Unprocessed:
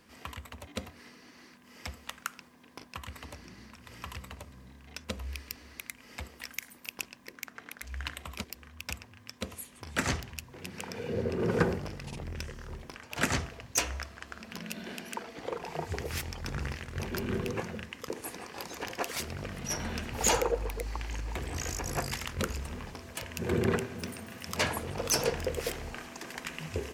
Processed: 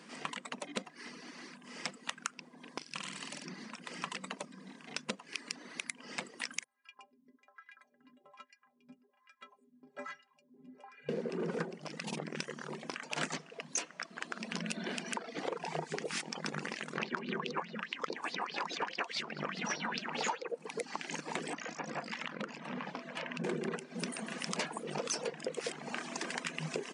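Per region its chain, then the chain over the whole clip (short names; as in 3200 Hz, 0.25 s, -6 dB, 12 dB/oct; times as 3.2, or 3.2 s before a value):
2.78–3.46 bell 740 Hz -11 dB 2.8 oct + notches 50/100/150/200/250/300/350/400/450/500 Hz + flutter echo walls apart 8.1 m, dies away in 1.1 s
6.64–11.09 LFO band-pass sine 1.2 Hz 230–1700 Hz + bell 140 Hz +9.5 dB 0.58 oct + metallic resonator 120 Hz, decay 0.36 s, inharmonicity 0.03
16.97–20.48 air absorption 110 m + LFO bell 4.8 Hz 950–4700 Hz +16 dB
21.53–23.44 compressor, threshold -36 dBFS + BPF 140–3000 Hz + bell 390 Hz -10.5 dB 0.29 oct
whole clip: reverb removal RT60 0.6 s; FFT band-pass 140–10000 Hz; compressor 10:1, threshold -40 dBFS; gain +6.5 dB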